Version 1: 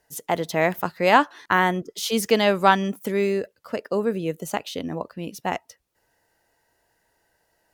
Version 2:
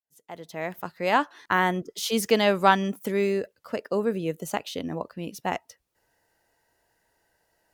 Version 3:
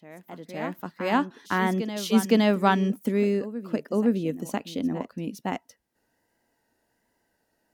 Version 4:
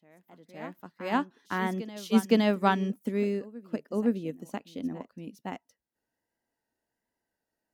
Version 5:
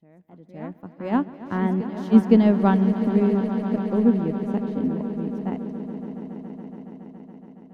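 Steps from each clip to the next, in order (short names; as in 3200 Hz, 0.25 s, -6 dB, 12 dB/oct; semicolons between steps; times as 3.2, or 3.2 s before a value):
opening faded in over 1.81 s; gain -2 dB
vibrato 1.3 Hz 43 cents; bell 240 Hz +12.5 dB 0.85 oct; reverse echo 0.514 s -12 dB; gain -4 dB
upward expander 1.5:1, over -38 dBFS; gain -1.5 dB
tilt -4 dB/oct; swelling echo 0.14 s, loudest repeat 5, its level -15 dB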